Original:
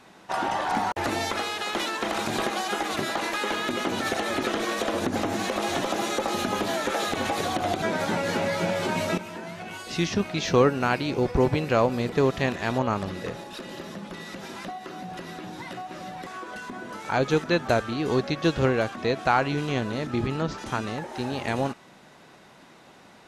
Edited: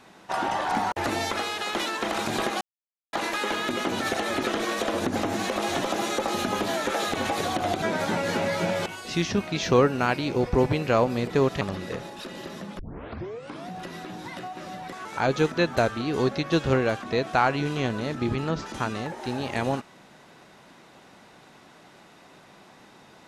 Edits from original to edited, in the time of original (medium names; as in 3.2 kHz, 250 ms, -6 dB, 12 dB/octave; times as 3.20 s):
2.61–3.13 s: mute
8.86–9.68 s: delete
12.43–12.95 s: delete
14.13 s: tape start 0.91 s
16.39–16.97 s: delete